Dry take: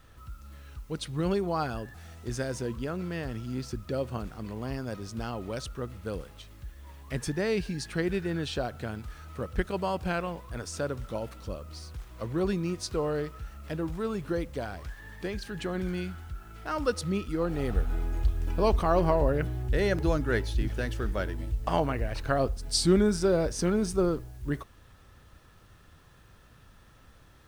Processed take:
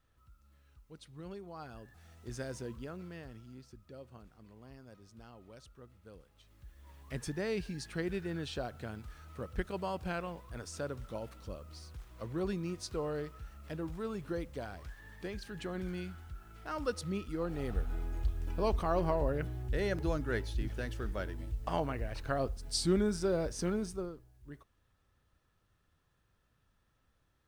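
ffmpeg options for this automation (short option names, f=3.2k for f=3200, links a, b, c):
-af "volume=4dB,afade=t=in:st=1.54:d=0.94:silence=0.316228,afade=t=out:st=2.48:d=1.17:silence=0.281838,afade=t=in:st=6.3:d=0.72:silence=0.251189,afade=t=out:st=23.72:d=0.41:silence=0.266073"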